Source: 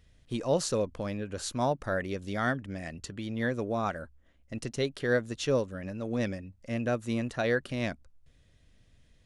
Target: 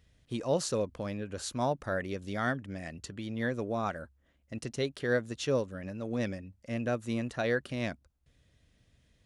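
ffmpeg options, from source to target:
ffmpeg -i in.wav -af "highpass=42,volume=-2dB" out.wav

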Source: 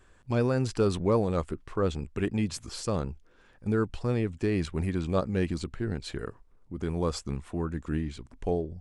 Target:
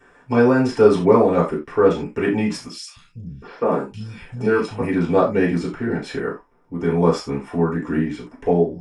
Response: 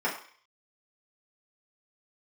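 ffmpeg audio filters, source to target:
-filter_complex "[0:a]asettb=1/sr,asplit=3[link_01][link_02][link_03];[link_01]atrim=end=2.684[link_04];[link_02]atrim=start=2.68:end=4.81,asetpts=PTS-STARTPTS,afade=type=in:duration=0.004:curve=qsin,afade=type=out:start_time=2.126:duration=0.004:curve=qsin,acrossover=split=150|2700[link_05][link_06][link_07];[link_05]adelay=280[link_08];[link_06]adelay=740[link_09];[link_08][link_09][link_07]amix=inputs=3:normalize=0,atrim=end_sample=93933[link_10];[link_03]atrim=start=4.806[link_11];[link_04][link_10]acrossfade=duration=0.004:curve1=hsin:curve2=qsin[link_12];[link_12][link_11]acrossfade=duration=0.004:curve1=qsin:curve2=hsin[link_13];[1:a]atrim=start_sample=2205,atrim=end_sample=4410[link_14];[link_13][link_14]afir=irnorm=-1:irlink=0,volume=2dB"

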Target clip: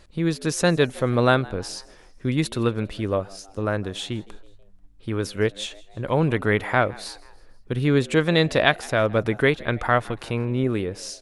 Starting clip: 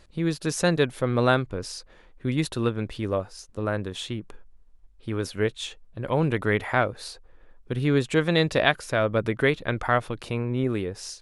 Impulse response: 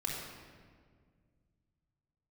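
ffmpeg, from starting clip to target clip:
-filter_complex "[0:a]asplit=4[link_01][link_02][link_03][link_04];[link_02]adelay=162,afreqshift=94,volume=-23dB[link_05];[link_03]adelay=324,afreqshift=188,volume=-28.7dB[link_06];[link_04]adelay=486,afreqshift=282,volume=-34.4dB[link_07];[link_01][link_05][link_06][link_07]amix=inputs=4:normalize=0,volume=2.5dB"

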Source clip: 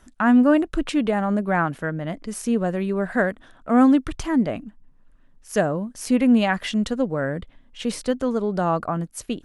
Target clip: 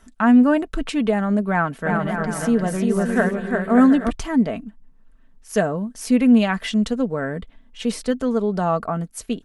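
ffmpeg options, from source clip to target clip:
ffmpeg -i in.wav -filter_complex "[0:a]aecho=1:1:4.5:0.44,asplit=3[link_01][link_02][link_03];[link_01]afade=type=out:start_time=1.85:duration=0.02[link_04];[link_02]aecho=1:1:350|577.5|725.4|821.5|884:0.631|0.398|0.251|0.158|0.1,afade=type=in:start_time=1.85:duration=0.02,afade=type=out:start_time=4.09:duration=0.02[link_05];[link_03]afade=type=in:start_time=4.09:duration=0.02[link_06];[link_04][link_05][link_06]amix=inputs=3:normalize=0" out.wav

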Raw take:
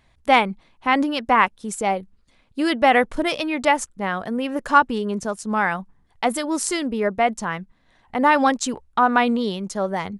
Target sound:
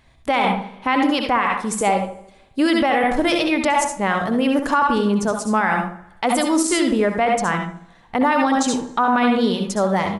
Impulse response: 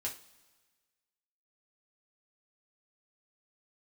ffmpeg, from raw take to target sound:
-filter_complex "[0:a]asplit=2[link_01][link_02];[link_02]adelay=78,lowpass=frequency=970:poles=1,volume=-7dB,asplit=2[link_03][link_04];[link_04]adelay=78,lowpass=frequency=970:poles=1,volume=0.41,asplit=2[link_05][link_06];[link_06]adelay=78,lowpass=frequency=970:poles=1,volume=0.41,asplit=2[link_07][link_08];[link_08]adelay=78,lowpass=frequency=970:poles=1,volume=0.41,asplit=2[link_09][link_10];[link_10]adelay=78,lowpass=frequency=970:poles=1,volume=0.41[link_11];[link_01][link_03][link_05][link_07][link_09][link_11]amix=inputs=6:normalize=0,asplit=2[link_12][link_13];[1:a]atrim=start_sample=2205,asetrate=57330,aresample=44100,adelay=63[link_14];[link_13][link_14]afir=irnorm=-1:irlink=0,volume=-3.5dB[link_15];[link_12][link_15]amix=inputs=2:normalize=0,alimiter=level_in=12.5dB:limit=-1dB:release=50:level=0:latency=1,volume=-8dB"

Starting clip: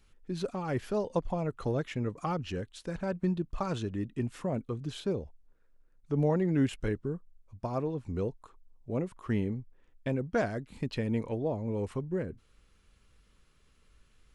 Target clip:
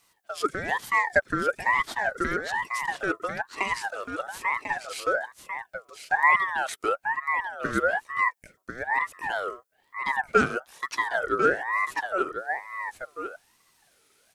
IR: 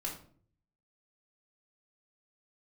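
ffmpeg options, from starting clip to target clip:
-filter_complex "[0:a]highpass=frequency=460:width_type=q:width=3.7,crystalizer=i=3:c=0,asplit=2[link_01][link_02];[link_02]aecho=0:1:1045:0.422[link_03];[link_01][link_03]amix=inputs=2:normalize=0,aeval=exprs='val(0)*sin(2*PI*1200*n/s+1200*0.3/1.1*sin(2*PI*1.1*n/s))':channel_layout=same,volume=3dB"

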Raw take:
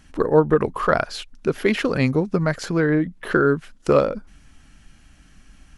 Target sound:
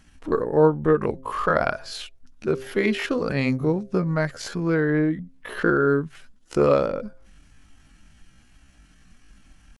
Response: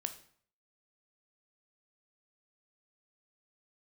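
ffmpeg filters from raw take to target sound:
-af "atempo=0.59,bandreject=frequency=132.2:width_type=h:width=4,bandreject=frequency=264.4:width_type=h:width=4,bandreject=frequency=396.6:width_type=h:width=4,bandreject=frequency=528.8:width_type=h:width=4,bandreject=frequency=661:width_type=h:width=4,volume=-2.5dB"

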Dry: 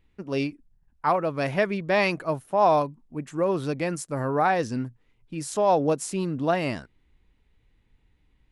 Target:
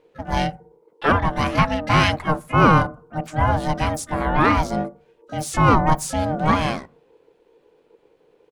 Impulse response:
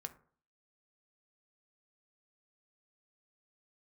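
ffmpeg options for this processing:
-filter_complex "[0:a]aeval=exprs='val(0)*sin(2*PI*460*n/s)':channel_layout=same,asplit=3[link_01][link_02][link_03];[link_02]asetrate=33038,aresample=44100,atempo=1.33484,volume=-9dB[link_04];[link_03]asetrate=88200,aresample=44100,atempo=0.5,volume=-14dB[link_05];[link_01][link_04][link_05]amix=inputs=3:normalize=0,asplit=2[link_06][link_07];[1:a]atrim=start_sample=2205,lowshelf=frequency=170:gain=7[link_08];[link_07][link_08]afir=irnorm=-1:irlink=0,volume=-6.5dB[link_09];[link_06][link_09]amix=inputs=2:normalize=0,volume=5dB"

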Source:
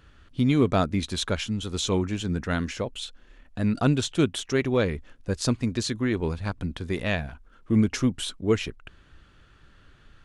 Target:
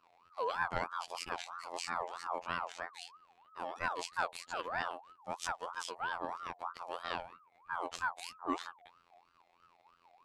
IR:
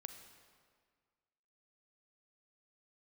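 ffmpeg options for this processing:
-af "afftfilt=real='hypot(re,im)*cos(PI*b)':imag='0':win_size=2048:overlap=0.75,aeval=exprs='val(0)*sin(2*PI*1000*n/s+1000*0.3/3.1*sin(2*PI*3.1*n/s))':channel_layout=same,volume=-7.5dB"

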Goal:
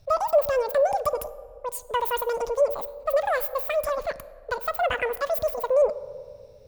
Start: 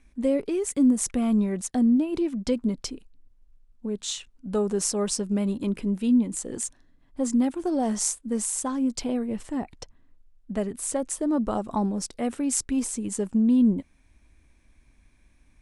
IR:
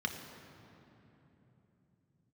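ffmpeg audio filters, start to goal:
-filter_complex "[0:a]asplit=2[link_01][link_02];[1:a]atrim=start_sample=2205,lowshelf=frequency=130:gain=-11.5,highshelf=frequency=8100:gain=10[link_03];[link_02][link_03]afir=irnorm=-1:irlink=0,volume=-15dB[link_04];[link_01][link_04]amix=inputs=2:normalize=0,asetrate=103194,aresample=44100,volume=1dB"

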